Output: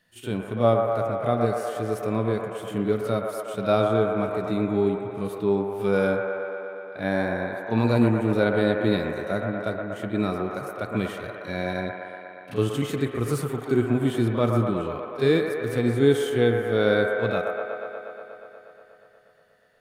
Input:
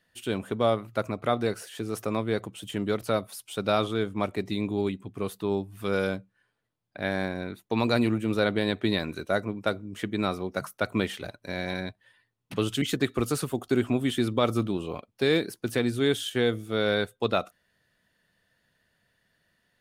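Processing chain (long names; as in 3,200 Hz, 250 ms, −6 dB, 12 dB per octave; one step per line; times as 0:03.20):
dynamic equaliser 3,600 Hz, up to −5 dB, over −45 dBFS, Q 0.71
echo ahead of the sound 35 ms −14.5 dB
harmonic and percussive parts rebalanced percussive −10 dB
delay with a band-pass on its return 120 ms, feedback 79%, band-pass 1,000 Hz, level −3 dB
on a send at −16 dB: convolution reverb RT60 0.45 s, pre-delay 5 ms
on the sum: level +5 dB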